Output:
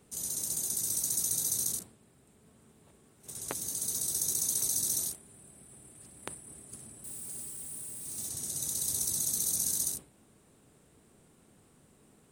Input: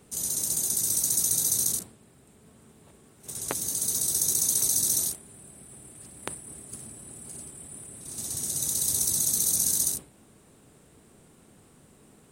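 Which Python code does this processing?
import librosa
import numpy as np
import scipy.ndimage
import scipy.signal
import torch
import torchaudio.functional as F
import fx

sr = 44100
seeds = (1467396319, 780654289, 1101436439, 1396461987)

y = fx.crossing_spikes(x, sr, level_db=-34.0, at=(7.04, 8.29))
y = y * 10.0 ** (-6.0 / 20.0)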